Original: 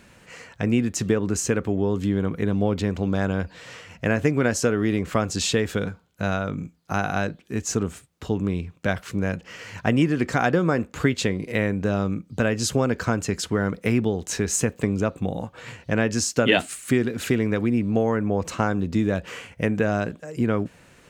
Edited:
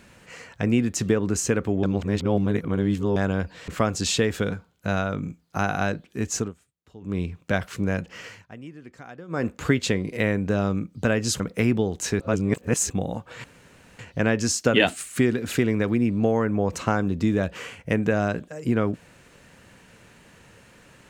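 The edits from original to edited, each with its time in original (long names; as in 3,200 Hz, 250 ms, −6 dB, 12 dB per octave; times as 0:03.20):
0:01.83–0:03.16: reverse
0:03.68–0:05.03: remove
0:07.71–0:08.54: duck −20 dB, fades 0.18 s
0:09.60–0:10.81: duck −21 dB, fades 0.18 s
0:12.75–0:13.67: remove
0:14.47–0:15.17: reverse
0:15.71: splice in room tone 0.55 s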